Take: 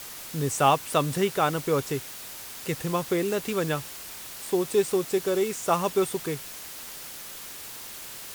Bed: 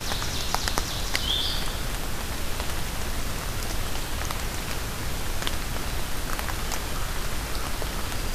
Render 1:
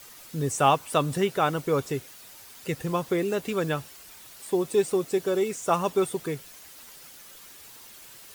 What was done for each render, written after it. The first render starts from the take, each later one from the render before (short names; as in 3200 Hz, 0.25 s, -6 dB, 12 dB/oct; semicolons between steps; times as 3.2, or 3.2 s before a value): denoiser 9 dB, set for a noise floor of -41 dBFS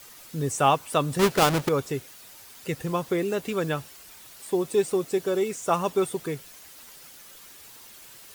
1.19–1.69 half-waves squared off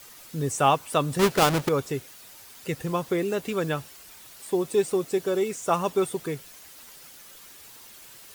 nothing audible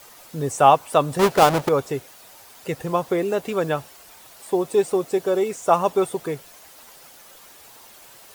bell 720 Hz +8.5 dB 1.5 oct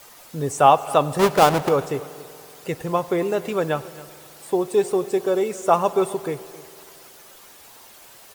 echo 0.269 s -19 dB; spring tank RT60 2.6 s, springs 47 ms, chirp 75 ms, DRR 16.5 dB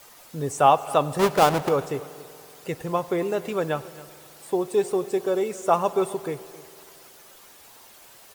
gain -3 dB